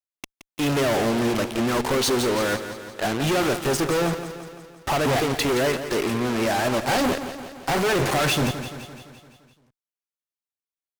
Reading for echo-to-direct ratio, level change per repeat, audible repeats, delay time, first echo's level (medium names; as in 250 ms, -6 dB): -9.0 dB, -4.5 dB, 6, 171 ms, -11.0 dB